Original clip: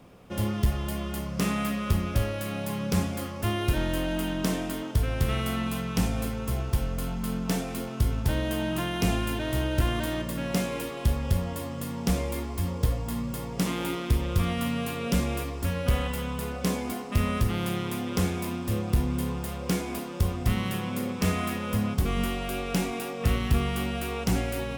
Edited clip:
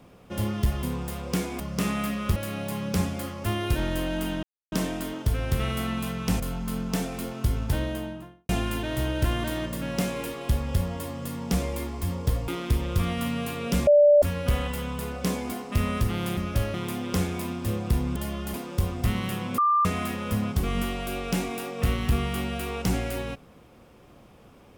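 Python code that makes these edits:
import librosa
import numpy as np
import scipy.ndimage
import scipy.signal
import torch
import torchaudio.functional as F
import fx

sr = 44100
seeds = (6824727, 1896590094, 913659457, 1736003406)

y = fx.studio_fade_out(x, sr, start_s=8.26, length_s=0.79)
y = fx.edit(y, sr, fx.swap(start_s=0.83, length_s=0.38, other_s=19.19, other_length_s=0.77),
    fx.move(start_s=1.97, length_s=0.37, to_s=17.77),
    fx.insert_silence(at_s=4.41, length_s=0.29),
    fx.cut(start_s=6.09, length_s=0.87),
    fx.cut(start_s=13.04, length_s=0.84),
    fx.bleep(start_s=15.27, length_s=0.35, hz=586.0, db=-12.5),
    fx.bleep(start_s=21.0, length_s=0.27, hz=1190.0, db=-18.0), tone=tone)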